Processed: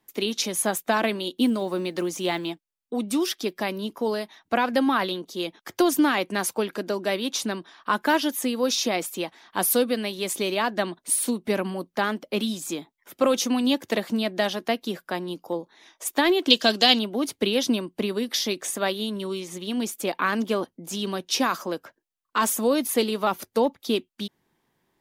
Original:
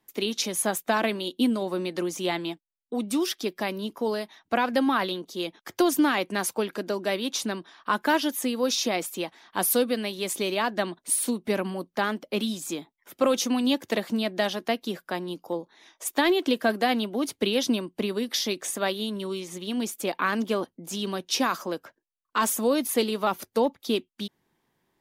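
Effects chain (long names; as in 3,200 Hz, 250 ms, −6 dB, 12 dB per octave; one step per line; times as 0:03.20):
0:01.36–0:02.51: one scale factor per block 7 bits
0:16.50–0:16.99: flat-topped bell 4,600 Hz +15 dB
level +1.5 dB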